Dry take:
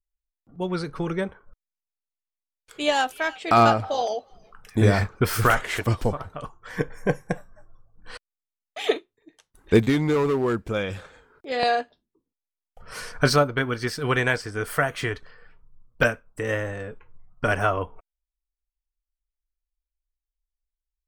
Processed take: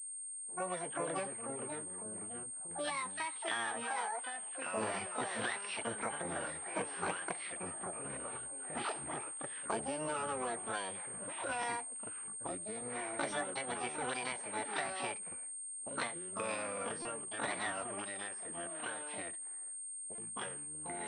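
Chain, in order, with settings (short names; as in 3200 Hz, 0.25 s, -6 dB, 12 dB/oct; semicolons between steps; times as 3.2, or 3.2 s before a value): harmoniser +12 st -5 dB; HPF 270 Hz 12 dB/oct; low-pass opened by the level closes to 930 Hz, open at -16.5 dBFS; expander -56 dBFS; compressor 6:1, threshold -31 dBFS, peak gain reduction 18 dB; echoes that change speed 0.236 s, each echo -4 st, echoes 3, each echo -6 dB; formant shift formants +5 st; stuck buffer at 17.02/20.15, samples 128, times 10; pulse-width modulation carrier 8600 Hz; gain -5 dB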